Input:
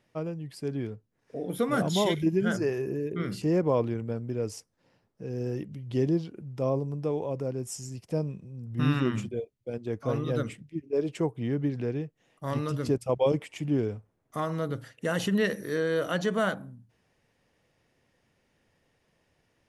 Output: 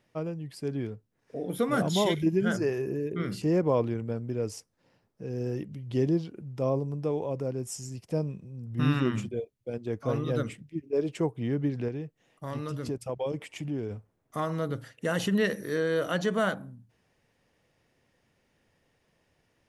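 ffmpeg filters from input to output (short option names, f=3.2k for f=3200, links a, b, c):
-filter_complex "[0:a]asettb=1/sr,asplit=3[a][b][c];[a]atrim=end=11.884[d];[b]atrim=start=11.88:end=13.91,asetpts=PTS-STARTPTS,afade=t=in:d=0.004:c=qsin,afade=t=out:st=2.026:d=0.004:c=qsin,acompressor=threshold=-33dB:ratio=2:attack=3.2:release=140:knee=1:detection=peak[e];[c]atrim=start=13.906[f];[d][e]acrossfade=d=0.004:c1=hsin:c2=qsin[g];[g][f]acrossfade=d=0.004:c1=qsin:c2=hsin"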